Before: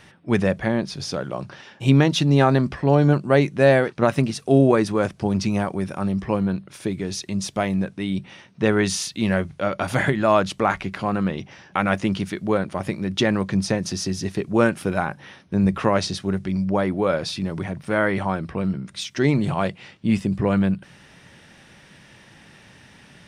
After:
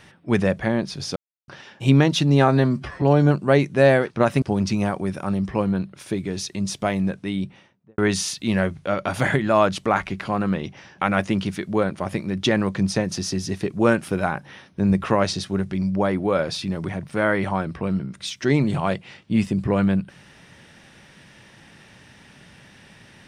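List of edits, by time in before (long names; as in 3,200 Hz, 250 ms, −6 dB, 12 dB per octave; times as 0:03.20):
0:01.16–0:01.48: silence
0:02.48–0:02.84: time-stretch 1.5×
0:04.24–0:05.16: remove
0:08.00–0:08.72: fade out and dull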